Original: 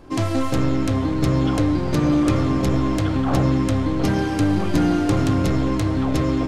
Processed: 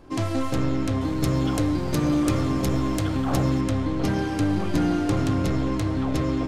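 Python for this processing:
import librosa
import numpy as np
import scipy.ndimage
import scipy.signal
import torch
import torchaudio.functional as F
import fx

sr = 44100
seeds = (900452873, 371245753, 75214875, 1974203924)

y = fx.high_shelf(x, sr, hz=7600.0, db=12.0, at=(1.01, 3.61))
y = y * 10.0 ** (-4.0 / 20.0)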